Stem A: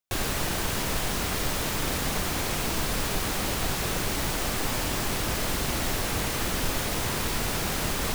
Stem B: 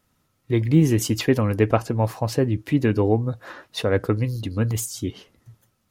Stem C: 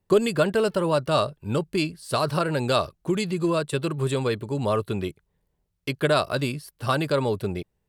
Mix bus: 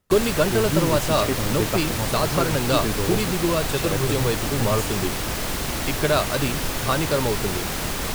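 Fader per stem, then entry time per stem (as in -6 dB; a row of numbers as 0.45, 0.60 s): +1.5, -7.0, +0.5 dB; 0.00, 0.00, 0.00 s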